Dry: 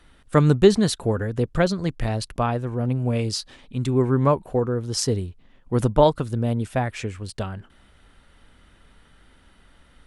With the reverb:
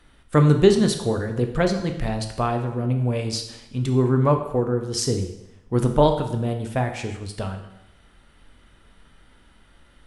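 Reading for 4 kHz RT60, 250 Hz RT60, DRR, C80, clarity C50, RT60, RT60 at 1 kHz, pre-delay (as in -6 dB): 0.80 s, 0.90 s, 5.0 dB, 11.0 dB, 8.5 dB, 0.80 s, 0.85 s, 7 ms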